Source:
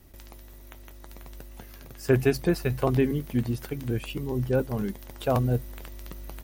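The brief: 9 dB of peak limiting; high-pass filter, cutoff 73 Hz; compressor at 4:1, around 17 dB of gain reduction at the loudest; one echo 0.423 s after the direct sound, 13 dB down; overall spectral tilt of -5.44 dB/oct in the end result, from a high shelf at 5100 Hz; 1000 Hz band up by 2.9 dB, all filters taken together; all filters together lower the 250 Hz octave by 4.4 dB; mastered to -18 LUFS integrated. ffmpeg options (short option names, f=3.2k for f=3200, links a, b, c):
-af "highpass=73,equalizer=f=250:t=o:g=-6,equalizer=f=1k:t=o:g=4.5,highshelf=f=5.1k:g=-5,acompressor=threshold=-40dB:ratio=4,alimiter=level_in=8dB:limit=-24dB:level=0:latency=1,volume=-8dB,aecho=1:1:423:0.224,volume=27dB"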